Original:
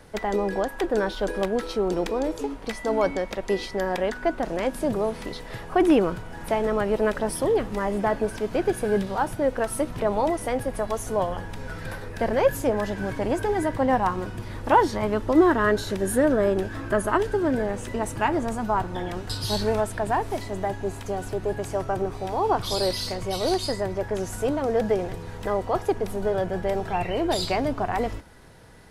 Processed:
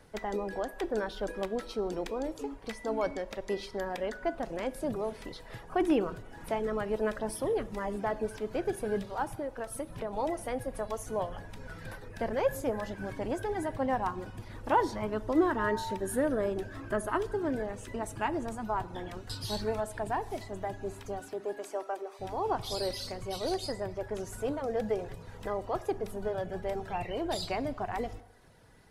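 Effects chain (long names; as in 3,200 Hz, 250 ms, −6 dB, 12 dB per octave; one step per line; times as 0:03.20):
0:21.19–0:22.19: high-pass filter 160 Hz → 500 Hz 24 dB per octave
reverb reduction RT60 0.57 s
0:09.39–0:10.13: downward compressor, threshold −25 dBFS, peak gain reduction 7.5 dB
0:15.55–0:15.96: steady tone 900 Hz −27 dBFS
dense smooth reverb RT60 1.1 s, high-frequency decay 0.85×, DRR 15 dB
level −8 dB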